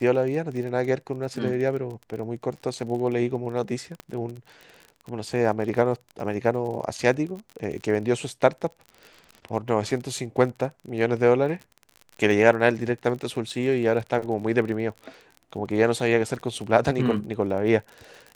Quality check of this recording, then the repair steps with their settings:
crackle 33/s -33 dBFS
4 pop -21 dBFS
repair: de-click

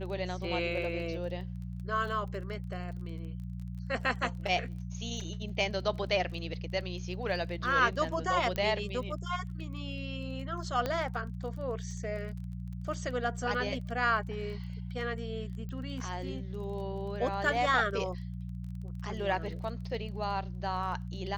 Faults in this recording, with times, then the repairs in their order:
crackle 22/s -42 dBFS
hum 60 Hz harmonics 3 -39 dBFS
8.56 pop -20 dBFS
10.86 pop -18 dBFS
15.69 pop -31 dBFS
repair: de-click; de-hum 60 Hz, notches 3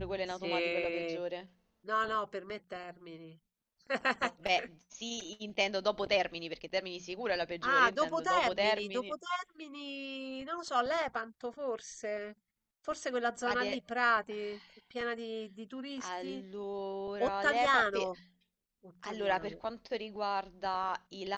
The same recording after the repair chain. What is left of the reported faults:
none

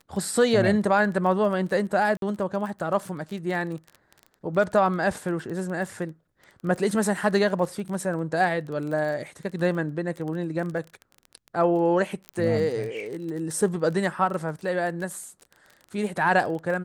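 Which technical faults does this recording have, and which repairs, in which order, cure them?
crackle 23/s -32 dBFS
2.17–2.22 gap 52 ms
12.29 pop -18 dBFS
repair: de-click; interpolate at 2.17, 52 ms

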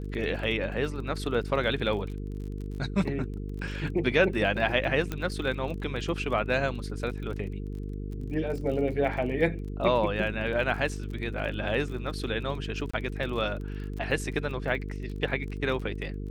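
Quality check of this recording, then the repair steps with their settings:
buzz 50 Hz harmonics 9 -35 dBFS
crackle 31/s -37 dBFS
5.12 pop -17 dBFS
12.91–12.94 gap 25 ms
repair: de-click; de-hum 50 Hz, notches 9; interpolate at 12.91, 25 ms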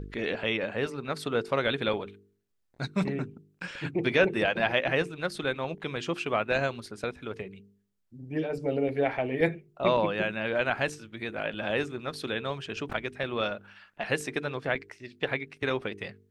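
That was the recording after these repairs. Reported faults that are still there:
none

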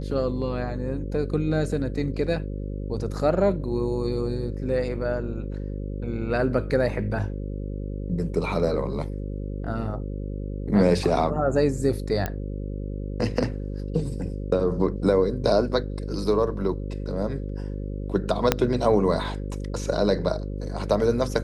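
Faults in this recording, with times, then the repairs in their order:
buzz 50 Hz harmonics 11 -31 dBFS
12.26 pop -13 dBFS
18.52 pop -3 dBFS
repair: de-click; de-hum 50 Hz, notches 11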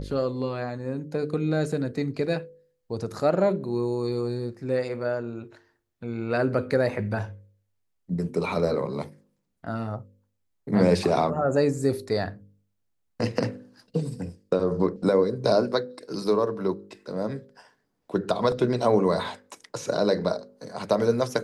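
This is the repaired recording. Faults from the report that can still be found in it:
18.52 pop

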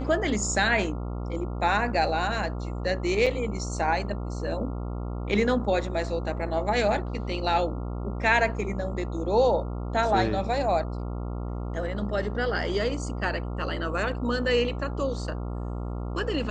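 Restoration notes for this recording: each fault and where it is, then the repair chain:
buzz 60 Hz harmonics 23 -32 dBFS
3.26–3.27 gap 5.9 ms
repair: de-hum 60 Hz, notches 23; interpolate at 3.26, 5.9 ms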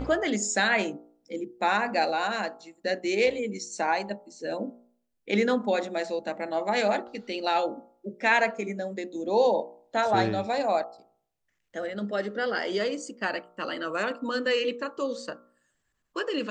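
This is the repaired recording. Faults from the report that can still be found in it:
none

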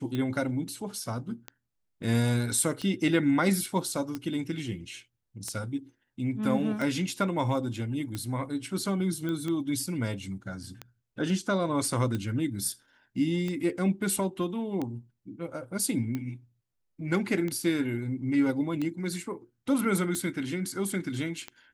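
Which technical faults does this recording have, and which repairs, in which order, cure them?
tick 45 rpm -20 dBFS
9.29 pop -22 dBFS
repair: de-click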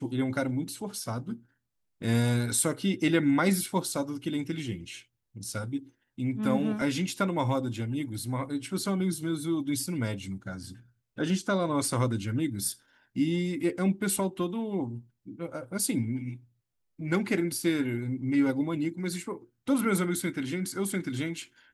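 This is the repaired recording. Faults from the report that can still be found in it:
none

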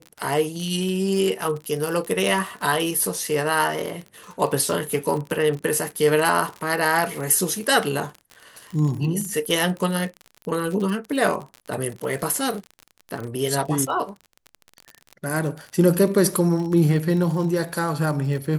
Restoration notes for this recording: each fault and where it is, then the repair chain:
crackle 42/s -28 dBFS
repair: de-click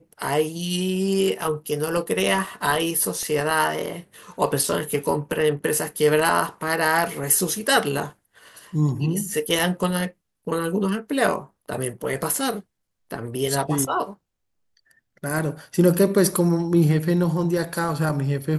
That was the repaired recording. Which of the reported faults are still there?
none

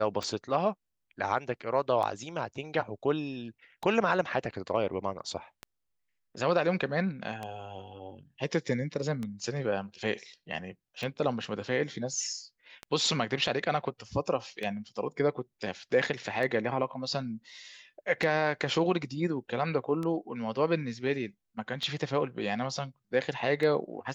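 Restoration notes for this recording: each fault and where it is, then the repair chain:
tick 33 1/3 rpm -22 dBFS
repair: de-click

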